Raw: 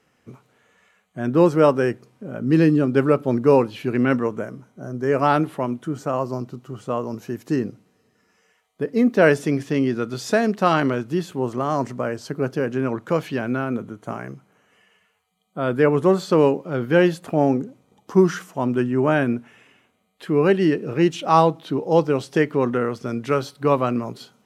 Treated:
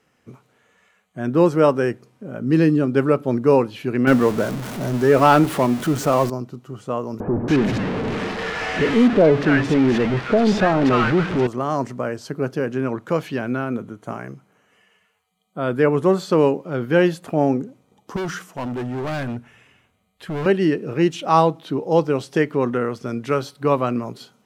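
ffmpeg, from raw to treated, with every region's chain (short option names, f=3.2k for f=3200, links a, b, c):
-filter_complex "[0:a]asettb=1/sr,asplit=3[a][b][c];[a]atrim=end=4.074[d];[b]atrim=start=4.07:end=6.3,asetpts=PTS-STARTPTS,afade=t=in:d=0.004:c=qsin,afade=t=out:st=2.226:d=0.004:c=qsin,aeval=exprs='val(0)+0.5*0.0299*sgn(val(0))':c=same,acontrast=30[e];[c]atrim=start=6.296[f];[d][e]acrossfade=d=0.004:c1=hsin:c2=qsin[g];[g][f]acrossfade=d=0.004:c1=qsin:c2=hsin,asettb=1/sr,asplit=3[h][i][j];[h]atrim=end=7.204[k];[i]atrim=start=7.2:end=11.47,asetpts=PTS-STARTPTS,afade=t=in:d=0.004:c=qsin,afade=t=out:st=4.266:d=0.004:c=qsin,aeval=exprs='val(0)+0.5*0.158*sgn(val(0))':c=same,lowpass=2.6k,acrossover=split=980[l][m];[m]adelay=280[n];[l][n]amix=inputs=2:normalize=0,atrim=end_sample=188307[o];[j]atrim=start=11.466[p];[k][o]acrossfade=d=0.004:c1=hsin:c2=qsin[q];[q][p]acrossfade=d=0.004:c1=qsin:c2=hsin,asettb=1/sr,asplit=3[r][s][t];[r]atrim=end=18.164[u];[s]atrim=start=18.16:end=20.46,asetpts=PTS-STARTPTS,afade=t=in:d=0.004:c=qsin,afade=t=out:st=2.296:d=0.004:c=qsin,asubboost=boost=8.5:cutoff=120,volume=23.5dB,asoftclip=hard,volume=-23.5dB[v];[t]atrim=start=20.456[w];[u][v]acrossfade=d=0.004:c1=hsin:c2=qsin[x];[x][w]acrossfade=d=0.004:c1=qsin:c2=hsin"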